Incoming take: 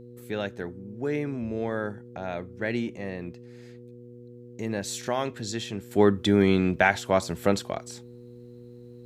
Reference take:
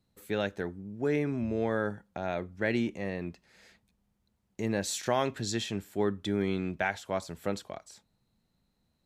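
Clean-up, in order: de-hum 121.1 Hz, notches 4; gain 0 dB, from 5.91 s -9.5 dB

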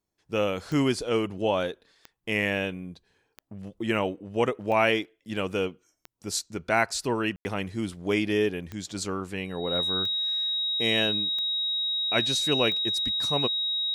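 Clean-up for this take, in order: de-click; notch 3800 Hz, Q 30; room tone fill 7.36–7.45

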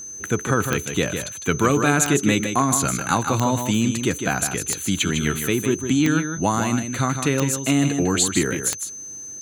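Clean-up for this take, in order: de-click; notch 6200 Hz, Q 30; inverse comb 0.155 s -7.5 dB

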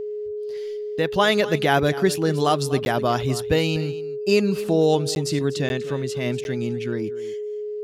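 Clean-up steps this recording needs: notch 420 Hz, Q 30; interpolate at 2.85/5.15/5.69/6.44, 11 ms; inverse comb 0.245 s -16.5 dB

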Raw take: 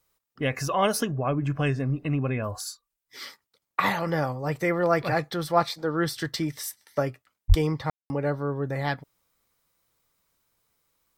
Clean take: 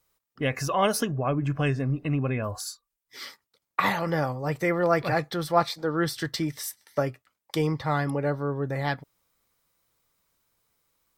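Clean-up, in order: de-plosive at 7.48; room tone fill 7.9–8.1

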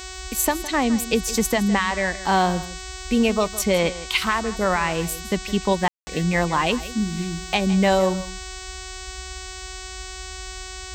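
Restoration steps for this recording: de-hum 373.4 Hz, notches 22; room tone fill 5.88–6.07; noise print and reduce 30 dB; inverse comb 0.162 s -15.5 dB

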